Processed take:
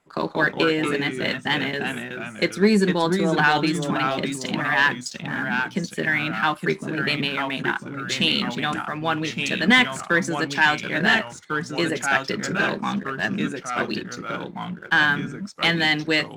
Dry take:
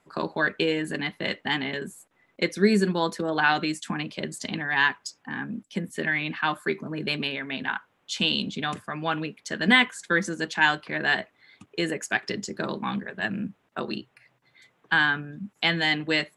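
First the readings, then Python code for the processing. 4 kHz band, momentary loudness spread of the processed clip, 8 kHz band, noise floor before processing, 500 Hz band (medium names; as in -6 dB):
+3.5 dB, 9 LU, +5.0 dB, -69 dBFS, +4.5 dB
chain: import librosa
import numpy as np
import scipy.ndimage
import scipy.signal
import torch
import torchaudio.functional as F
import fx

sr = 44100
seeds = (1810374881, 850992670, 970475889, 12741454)

y = fx.leveller(x, sr, passes=1)
y = fx.echo_pitch(y, sr, ms=161, semitones=-2, count=2, db_per_echo=-6.0)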